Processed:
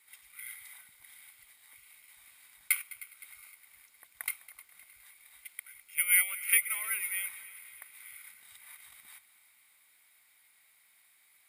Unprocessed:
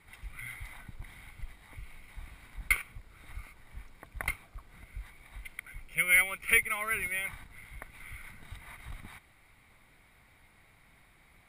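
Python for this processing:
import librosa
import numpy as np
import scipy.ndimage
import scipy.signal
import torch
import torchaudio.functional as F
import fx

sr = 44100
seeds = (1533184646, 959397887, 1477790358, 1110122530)

y = np.diff(x, prepend=0.0)
y = fx.echo_heads(y, sr, ms=103, heads='second and third', feedback_pct=58, wet_db=-18.5)
y = y * librosa.db_to_amplitude(5.0)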